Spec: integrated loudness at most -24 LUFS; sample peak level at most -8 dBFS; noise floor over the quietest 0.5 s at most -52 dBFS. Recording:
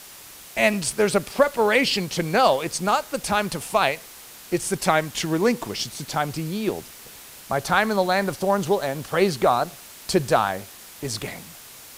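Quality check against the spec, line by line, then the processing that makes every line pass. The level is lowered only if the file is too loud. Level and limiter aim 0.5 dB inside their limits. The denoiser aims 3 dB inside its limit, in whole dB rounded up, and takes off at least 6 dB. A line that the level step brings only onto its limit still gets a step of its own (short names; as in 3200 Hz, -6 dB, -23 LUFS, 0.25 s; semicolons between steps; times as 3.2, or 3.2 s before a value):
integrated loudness -23.0 LUFS: fail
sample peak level -4.0 dBFS: fail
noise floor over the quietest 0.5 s -43 dBFS: fail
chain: denoiser 11 dB, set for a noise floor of -43 dBFS; gain -1.5 dB; limiter -8.5 dBFS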